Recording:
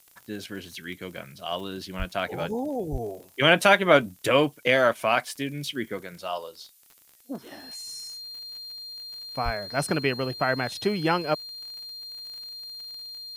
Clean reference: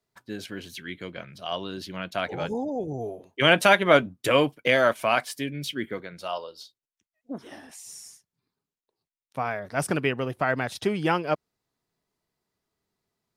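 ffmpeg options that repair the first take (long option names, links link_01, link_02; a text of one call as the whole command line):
ffmpeg -i in.wav -filter_complex "[0:a]adeclick=threshold=4,bandreject=frequency=4200:width=30,asplit=3[link_01][link_02][link_03];[link_01]afade=type=out:start_time=1.98:duration=0.02[link_04];[link_02]highpass=frequency=140:width=0.5412,highpass=frequency=140:width=1.3066,afade=type=in:start_time=1.98:duration=0.02,afade=type=out:start_time=2.1:duration=0.02[link_05];[link_03]afade=type=in:start_time=2.1:duration=0.02[link_06];[link_04][link_05][link_06]amix=inputs=3:normalize=0,asplit=3[link_07][link_08][link_09];[link_07]afade=type=out:start_time=2.91:duration=0.02[link_10];[link_08]highpass=frequency=140:width=0.5412,highpass=frequency=140:width=1.3066,afade=type=in:start_time=2.91:duration=0.02,afade=type=out:start_time=3.03:duration=0.02[link_11];[link_09]afade=type=in:start_time=3.03:duration=0.02[link_12];[link_10][link_11][link_12]amix=inputs=3:normalize=0,asplit=3[link_13][link_14][link_15];[link_13]afade=type=out:start_time=9.44:duration=0.02[link_16];[link_14]highpass=frequency=140:width=0.5412,highpass=frequency=140:width=1.3066,afade=type=in:start_time=9.44:duration=0.02,afade=type=out:start_time=9.56:duration=0.02[link_17];[link_15]afade=type=in:start_time=9.56:duration=0.02[link_18];[link_16][link_17][link_18]amix=inputs=3:normalize=0,agate=range=-21dB:threshold=-44dB" out.wav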